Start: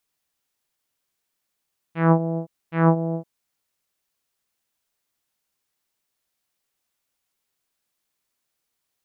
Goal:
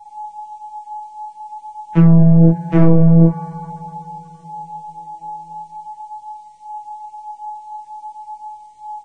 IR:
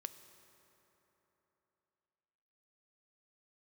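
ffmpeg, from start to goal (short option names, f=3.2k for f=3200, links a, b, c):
-filter_complex "[0:a]aeval=exprs='if(lt(val(0),0),0.708*val(0),val(0))':c=same,lowshelf=f=460:g=9.5,aeval=exprs='val(0)+0.00501*sin(2*PI*850*n/s)':c=same,acrossover=split=120|650[a][b][c];[a]acompressor=threshold=-22dB:ratio=4[d];[b]acompressor=threshold=-21dB:ratio=4[e];[c]acompressor=threshold=-45dB:ratio=4[f];[d][e][f]amix=inputs=3:normalize=0,adynamicequalizer=threshold=0.0224:dfrequency=280:dqfactor=0.86:tfrequency=280:tqfactor=0.86:attack=5:release=100:ratio=0.375:range=2:mode=cutabove:tftype=bell,flanger=delay=17:depth=6.9:speed=0.46,aecho=1:1:35|53|71:0.447|0.596|0.501[g];[1:a]atrim=start_sample=2205,asetrate=40131,aresample=44100[h];[g][h]afir=irnorm=-1:irlink=0,alimiter=level_in=23dB:limit=-1dB:release=50:level=0:latency=1,volume=-1.5dB" -ar 22050 -c:a libvorbis -b:a 16k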